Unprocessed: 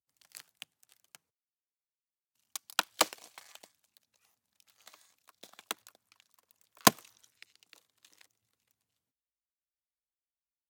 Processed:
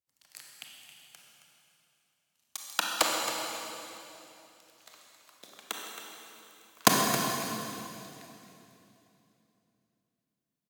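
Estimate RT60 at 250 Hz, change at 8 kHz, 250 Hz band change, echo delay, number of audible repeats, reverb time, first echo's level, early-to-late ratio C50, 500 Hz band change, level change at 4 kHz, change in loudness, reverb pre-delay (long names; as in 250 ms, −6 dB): 3.5 s, +4.0 dB, +4.5 dB, 270 ms, 1, 3.0 s, −10.0 dB, −0.5 dB, +3.5 dB, +4.0 dB, +0.5 dB, 23 ms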